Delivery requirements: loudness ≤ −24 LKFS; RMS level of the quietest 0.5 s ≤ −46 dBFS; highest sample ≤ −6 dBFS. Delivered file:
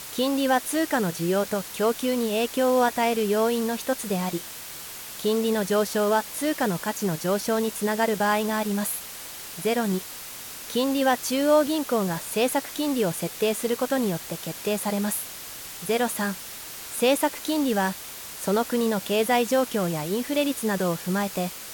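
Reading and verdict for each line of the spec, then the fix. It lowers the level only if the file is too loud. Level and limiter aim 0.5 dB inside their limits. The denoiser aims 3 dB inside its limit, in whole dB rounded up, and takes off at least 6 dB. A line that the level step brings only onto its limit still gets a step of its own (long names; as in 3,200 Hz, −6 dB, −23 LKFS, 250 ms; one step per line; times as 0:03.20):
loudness −25.0 LKFS: in spec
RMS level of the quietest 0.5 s −39 dBFS: out of spec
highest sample −8.5 dBFS: in spec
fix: broadband denoise 10 dB, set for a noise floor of −39 dBFS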